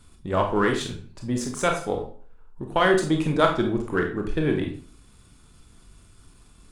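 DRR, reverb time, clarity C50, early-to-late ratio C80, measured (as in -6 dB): 2.5 dB, 0.45 s, 7.0 dB, 12.0 dB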